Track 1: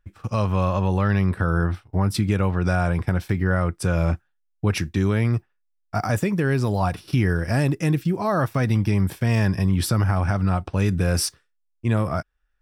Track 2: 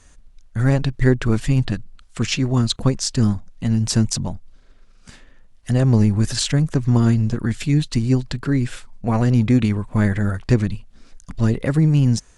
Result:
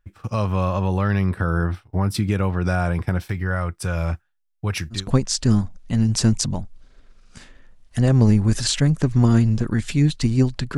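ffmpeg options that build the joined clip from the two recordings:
ffmpeg -i cue0.wav -i cue1.wav -filter_complex "[0:a]asettb=1/sr,asplit=3[link_01][link_02][link_03];[link_01]atrim=end=3.304[link_04];[link_02]atrim=start=3.3:end=5.08,asetpts=PTS-STARTPTS,afade=type=in:duration=0.004:curve=qsin,afade=type=out:start_time=1.776:duration=0.004:curve=qsin,equalizer=frequency=280:width_type=o:width=2:gain=-7[link_05];[link_03]atrim=start=5.076[link_06];[link_04][link_05]acrossfade=duration=0.004:curve1=hsin:curve2=qsin[link_07];[link_07][link_06]acrossfade=duration=0.004:curve1=qsin:curve2=hsin,apad=whole_dur=10.77,atrim=end=10.77,atrim=end=5.08,asetpts=PTS-STARTPTS[link_08];[1:a]atrim=start=2.62:end=8.49,asetpts=PTS-STARTPTS[link_09];[link_08][link_09]acrossfade=duration=0.18:curve1=tri:curve2=tri" out.wav

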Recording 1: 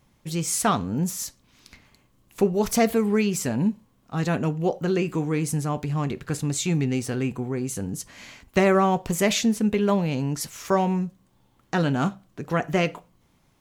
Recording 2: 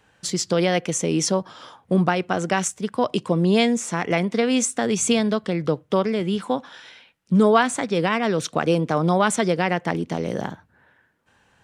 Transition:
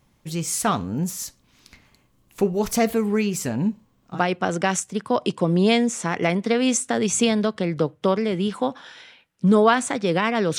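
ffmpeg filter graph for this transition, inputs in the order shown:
ffmpeg -i cue0.wav -i cue1.wav -filter_complex "[0:a]asettb=1/sr,asplit=3[link_01][link_02][link_03];[link_01]atrim=end=3.504[link_04];[link_02]atrim=start=3.5:end=4.22,asetpts=PTS-STARTPTS,afade=type=in:duration=0.004:curve=qsin,afade=type=out:start_time=0.716:duration=0.004:curve=qsin,equalizer=frequency=11000:width=3:gain=-11[link_05];[link_03]atrim=start=4.216[link_06];[link_04][link_05]acrossfade=duration=0.004:curve1=hsin:curve2=qsin[link_07];[link_07][link_06]acrossfade=duration=0.004:curve1=qsin:curve2=hsin,apad=whole_dur=10.58,atrim=end=10.58,atrim=end=4.22,asetpts=PTS-STARTPTS[link_08];[1:a]atrim=start=2:end=8.46,asetpts=PTS-STARTPTS[link_09];[link_08][link_09]acrossfade=duration=0.1:curve1=tri:curve2=tri" out.wav

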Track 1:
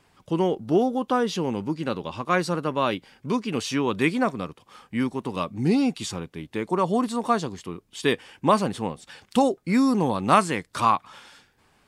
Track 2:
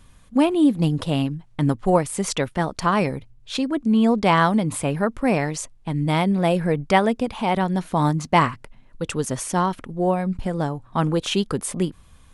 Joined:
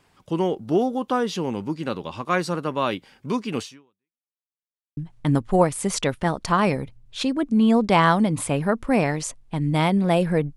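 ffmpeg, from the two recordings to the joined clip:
ffmpeg -i cue0.wav -i cue1.wav -filter_complex "[0:a]apad=whole_dur=10.56,atrim=end=10.56,asplit=2[link_01][link_02];[link_01]atrim=end=4.27,asetpts=PTS-STARTPTS,afade=type=out:start_time=3.61:duration=0.66:curve=exp[link_03];[link_02]atrim=start=4.27:end=4.97,asetpts=PTS-STARTPTS,volume=0[link_04];[1:a]atrim=start=1.31:end=6.9,asetpts=PTS-STARTPTS,afade=type=in:duration=0.004:curve=hsin[link_05];[link_03][link_04][link_05]concat=n=3:v=0:a=1" out.wav

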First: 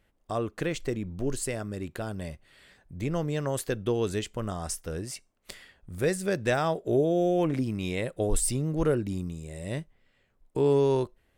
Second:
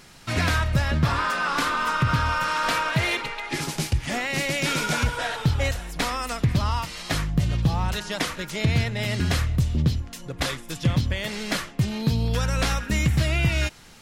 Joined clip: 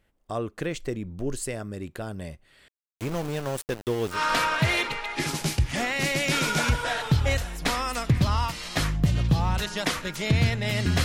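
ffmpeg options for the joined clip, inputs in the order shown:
ffmpeg -i cue0.wav -i cue1.wav -filter_complex "[0:a]asettb=1/sr,asplit=3[link_01][link_02][link_03];[link_01]atrim=end=2.684[link_04];[link_02]atrim=start=2.68:end=4.2,asetpts=PTS-STARTPTS,afade=type=in:duration=0.004:curve=qsin,afade=type=out:start_time=1.516:duration=0.004:curve=qsin,aeval=exprs='val(0)*gte(abs(val(0)),0.0251)':channel_layout=same[link_05];[link_03]atrim=start=4.196[link_06];[link_04][link_05]acrossfade=duration=0.004:curve1=hsin:curve2=qsin[link_07];[link_07][link_06]acrossfade=duration=0.004:curve1=qsin:curve2=hsin,apad=whole_dur=11.04,atrim=end=11.04,atrim=end=4.2,asetpts=PTS-STARTPTS[link_08];[1:a]atrim=start=2.44:end=9.38,asetpts=PTS-STARTPTS[link_09];[link_08][link_09]acrossfade=duration=0.1:curve1=tri:curve2=tri" out.wav

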